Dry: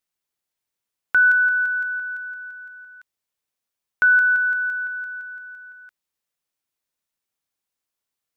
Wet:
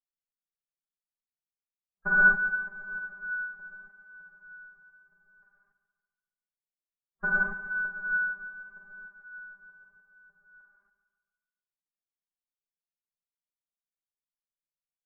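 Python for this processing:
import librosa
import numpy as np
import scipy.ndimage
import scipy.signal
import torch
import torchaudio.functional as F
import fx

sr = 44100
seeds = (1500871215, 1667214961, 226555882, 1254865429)

p1 = fx.noise_reduce_blind(x, sr, reduce_db=26)
p2 = scipy.signal.sosfilt(scipy.signal.butter(4, 1300.0, 'lowpass', fs=sr, output='sos'), p1)
p3 = fx.tilt_eq(p2, sr, slope=-4.0)
p4 = p3 + 0.78 * np.pad(p3, (int(5.0 * sr / 1000.0), 0))[:len(p3)]
p5 = fx.stretch_vocoder(p4, sr, factor=1.8)
p6 = fx.vibrato(p5, sr, rate_hz=0.83, depth_cents=11.0)
p7 = p6 + fx.echo_feedback(p6, sr, ms=142, feedback_pct=54, wet_db=-11.5, dry=0)
p8 = fx.rev_gated(p7, sr, seeds[0], gate_ms=300, shape='flat', drr_db=-7.5)
p9 = fx.upward_expand(p8, sr, threshold_db=-31.0, expansion=1.5)
y = F.gain(torch.from_numpy(p9), -2.0).numpy()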